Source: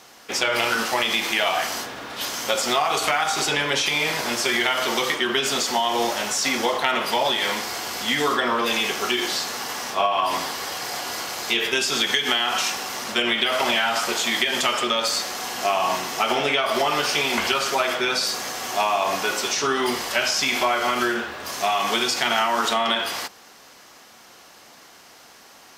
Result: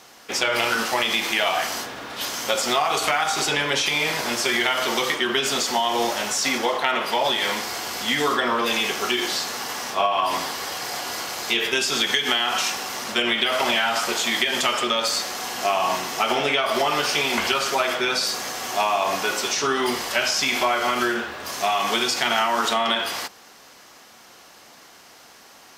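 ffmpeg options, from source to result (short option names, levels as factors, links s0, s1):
-filter_complex "[0:a]asettb=1/sr,asplit=3[s0][s1][s2];[s0]atrim=end=6.584[s3];[s1]atrim=start=6.58:end=7.24,asetpts=PTS-STARTPTS,afade=t=in:d=0.004:c=qsin,afade=t=out:st=0.656:d=0.004:c=qsin,bass=f=250:g=-4,treble=f=4000:g=-4[s4];[s2]atrim=start=7.236[s5];[s3][s4]acrossfade=d=0.004:c1=hsin:c2=qsin[s6];[s6][s5]acrossfade=d=0.004:c1=qsin:c2=hsin"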